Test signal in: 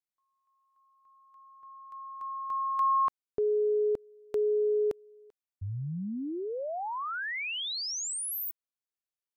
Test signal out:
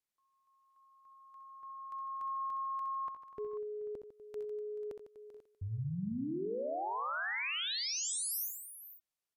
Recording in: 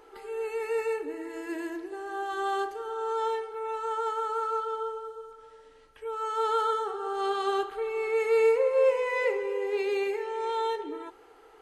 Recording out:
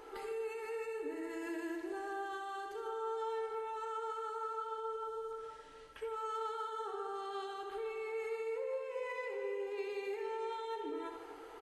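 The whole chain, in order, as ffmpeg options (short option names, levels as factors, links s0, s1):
-filter_complex "[0:a]acompressor=threshold=0.0158:ratio=6:attack=3.8:release=323:knee=6:detection=rms,alimiter=level_in=4.22:limit=0.0631:level=0:latency=1:release=50,volume=0.237,asplit=2[s0][s1];[s1]aecho=0:1:65|82|152|246|432|490:0.376|0.2|0.251|0.168|0.126|0.178[s2];[s0][s2]amix=inputs=2:normalize=0,aresample=32000,aresample=44100,volume=1.19"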